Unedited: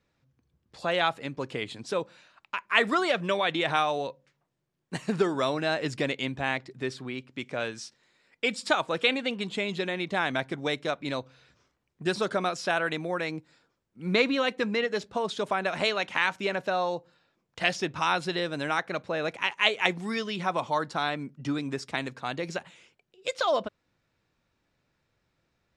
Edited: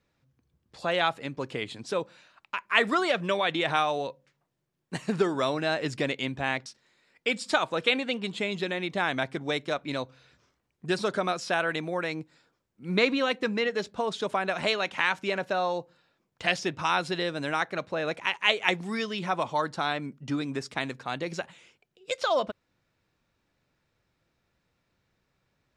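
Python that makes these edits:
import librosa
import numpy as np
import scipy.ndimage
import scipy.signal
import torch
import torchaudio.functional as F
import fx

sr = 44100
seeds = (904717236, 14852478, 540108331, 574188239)

y = fx.edit(x, sr, fx.cut(start_s=6.66, length_s=1.17), tone=tone)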